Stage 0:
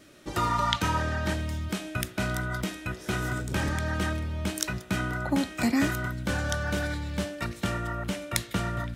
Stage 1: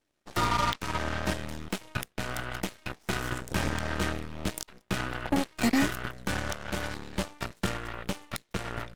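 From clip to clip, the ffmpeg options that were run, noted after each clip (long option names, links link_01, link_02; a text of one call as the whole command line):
ffmpeg -i in.wav -af "alimiter=limit=-15dB:level=0:latency=1:release=356,aeval=exprs='0.178*(cos(1*acos(clip(val(0)/0.178,-1,1)))-cos(1*PI/2))+0.00316*(cos(3*acos(clip(val(0)/0.178,-1,1)))-cos(3*PI/2))+0.0251*(cos(7*acos(clip(val(0)/0.178,-1,1)))-cos(7*PI/2))+0.0141*(cos(8*acos(clip(val(0)/0.178,-1,1)))-cos(8*PI/2))':channel_layout=same" out.wav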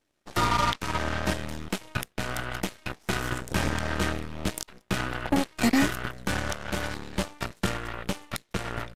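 ffmpeg -i in.wav -af "aresample=32000,aresample=44100,volume=2.5dB" out.wav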